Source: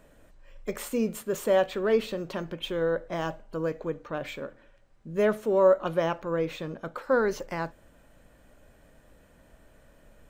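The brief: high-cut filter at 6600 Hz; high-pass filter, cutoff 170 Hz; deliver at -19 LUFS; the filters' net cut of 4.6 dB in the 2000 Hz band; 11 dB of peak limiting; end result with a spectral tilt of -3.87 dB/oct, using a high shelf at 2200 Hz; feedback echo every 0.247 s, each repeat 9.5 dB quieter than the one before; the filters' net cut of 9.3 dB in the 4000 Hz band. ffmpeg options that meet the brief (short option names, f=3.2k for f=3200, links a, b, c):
-af "highpass=170,lowpass=6.6k,equalizer=f=2k:t=o:g=-3,highshelf=f=2.2k:g=-4,equalizer=f=4k:t=o:g=-7.5,alimiter=limit=-22dB:level=0:latency=1,aecho=1:1:247|494|741|988:0.335|0.111|0.0365|0.012,volume=14dB"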